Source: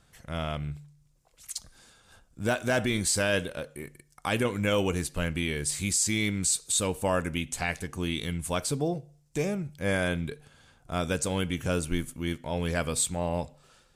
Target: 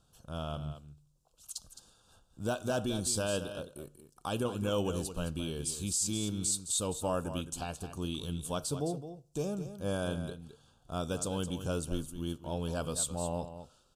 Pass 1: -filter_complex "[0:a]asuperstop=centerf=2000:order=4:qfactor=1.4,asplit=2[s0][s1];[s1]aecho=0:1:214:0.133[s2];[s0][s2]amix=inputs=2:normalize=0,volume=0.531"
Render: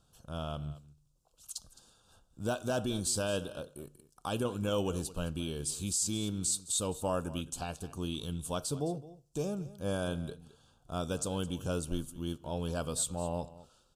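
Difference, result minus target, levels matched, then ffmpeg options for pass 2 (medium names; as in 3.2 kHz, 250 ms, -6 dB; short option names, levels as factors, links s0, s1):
echo-to-direct -6.5 dB
-filter_complex "[0:a]asuperstop=centerf=2000:order=4:qfactor=1.4,asplit=2[s0][s1];[s1]aecho=0:1:214:0.282[s2];[s0][s2]amix=inputs=2:normalize=0,volume=0.531"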